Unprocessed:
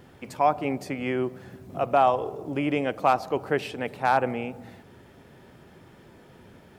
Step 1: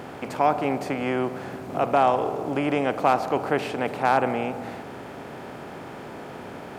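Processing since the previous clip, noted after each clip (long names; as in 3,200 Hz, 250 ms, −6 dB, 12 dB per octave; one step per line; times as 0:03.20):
compressor on every frequency bin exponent 0.6
parametric band 210 Hz +3 dB 0.62 octaves
level −1.5 dB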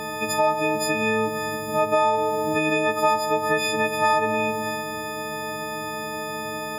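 every partial snapped to a pitch grid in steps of 6 semitones
downward compressor 2.5 to 1, threshold −23 dBFS, peak gain reduction 8.5 dB
level +3 dB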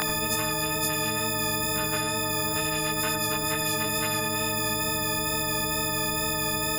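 chorus effect 2.2 Hz, delay 19.5 ms, depth 2.4 ms
on a send at −12 dB: convolution reverb, pre-delay 77 ms
on the sum: every bin compressed towards the loudest bin 10 to 1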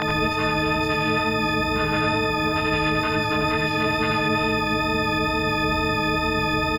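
brickwall limiter −17.5 dBFS, peak gain reduction 6 dB
high-frequency loss of the air 260 metres
single-tap delay 86 ms −5 dB
level +9 dB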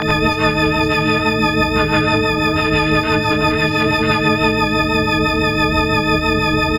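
rotating-speaker cabinet horn 6 Hz
level +9 dB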